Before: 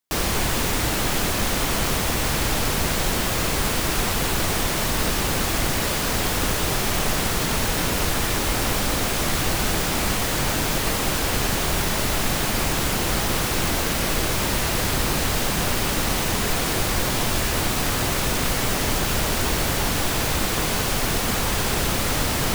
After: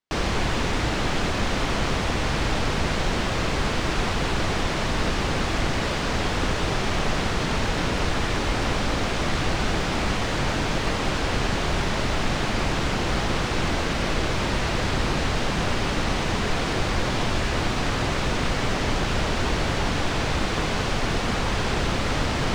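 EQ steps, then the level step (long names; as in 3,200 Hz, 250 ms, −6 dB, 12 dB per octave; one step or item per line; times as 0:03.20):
high-frequency loss of the air 120 metres
0.0 dB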